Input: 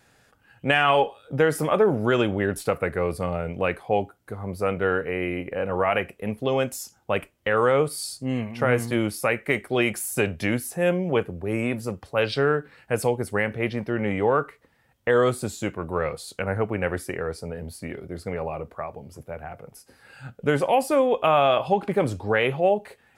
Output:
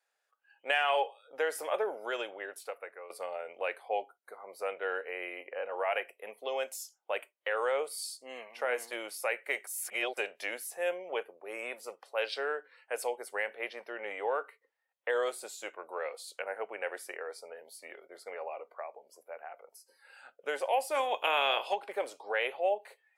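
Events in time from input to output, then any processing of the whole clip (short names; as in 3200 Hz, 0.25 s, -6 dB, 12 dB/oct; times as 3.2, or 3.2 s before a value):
1.89–3.1 fade out, to -13 dB
9.67–10.17 reverse
20.94–21.74 spectral limiter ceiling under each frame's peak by 17 dB
whole clip: HPF 510 Hz 24 dB/oct; spectral noise reduction 14 dB; dynamic EQ 1200 Hz, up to -6 dB, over -42 dBFS, Q 3.4; gain -7 dB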